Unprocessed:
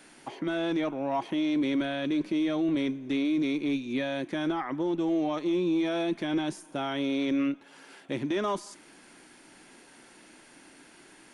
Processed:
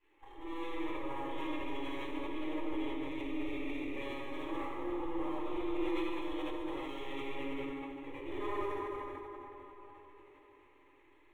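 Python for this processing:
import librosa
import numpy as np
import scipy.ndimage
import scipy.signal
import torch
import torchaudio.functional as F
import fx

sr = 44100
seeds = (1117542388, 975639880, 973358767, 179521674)

y = fx.frame_reverse(x, sr, frame_ms=205.0)
y = fx.bandpass_edges(y, sr, low_hz=320.0, high_hz=5500.0)
y = fx.spec_topn(y, sr, count=32)
y = np.maximum(y, 0.0)
y = fx.fixed_phaser(y, sr, hz=1000.0, stages=8)
y = fx.rev_plate(y, sr, seeds[0], rt60_s=4.6, hf_ratio=0.5, predelay_ms=0, drr_db=-6.0)
y = fx.sustainer(y, sr, db_per_s=20.0)
y = y * 10.0 ** (-4.5 / 20.0)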